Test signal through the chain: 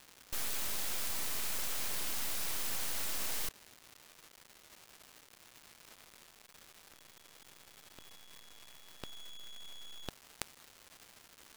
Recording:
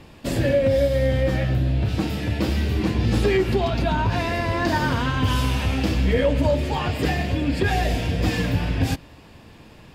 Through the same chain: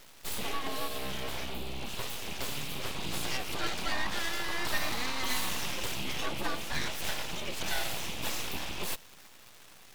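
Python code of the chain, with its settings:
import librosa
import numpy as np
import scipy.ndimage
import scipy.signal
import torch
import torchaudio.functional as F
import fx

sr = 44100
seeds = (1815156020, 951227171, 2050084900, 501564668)

y = fx.bass_treble(x, sr, bass_db=-13, treble_db=11)
y = fx.fixed_phaser(y, sr, hz=1700.0, stages=6)
y = np.abs(y)
y = fx.dmg_crackle(y, sr, seeds[0], per_s=500.0, level_db=-40.0)
y = y * librosa.db_to_amplitude(-2.0)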